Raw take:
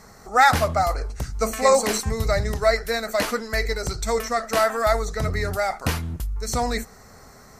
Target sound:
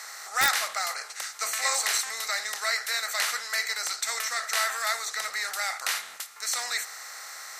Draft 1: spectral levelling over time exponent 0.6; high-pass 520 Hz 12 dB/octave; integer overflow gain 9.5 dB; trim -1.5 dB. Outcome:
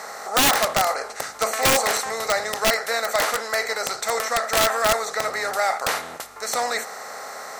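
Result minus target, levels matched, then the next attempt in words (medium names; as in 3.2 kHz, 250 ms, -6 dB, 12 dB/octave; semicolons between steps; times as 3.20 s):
500 Hz band +12.0 dB
spectral levelling over time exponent 0.6; high-pass 2 kHz 12 dB/octave; integer overflow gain 9.5 dB; trim -1.5 dB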